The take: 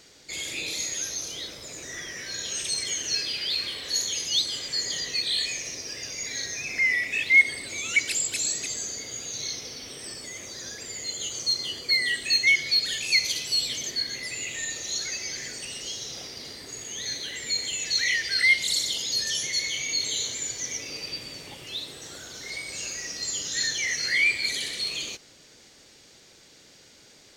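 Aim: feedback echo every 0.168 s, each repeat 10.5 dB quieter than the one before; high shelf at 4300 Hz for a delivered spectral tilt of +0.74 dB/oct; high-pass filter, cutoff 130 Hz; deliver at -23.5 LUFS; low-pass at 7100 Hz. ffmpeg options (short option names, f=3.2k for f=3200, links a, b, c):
-af "highpass=130,lowpass=7.1k,highshelf=f=4.3k:g=-5,aecho=1:1:168|336|504:0.299|0.0896|0.0269,volume=4dB"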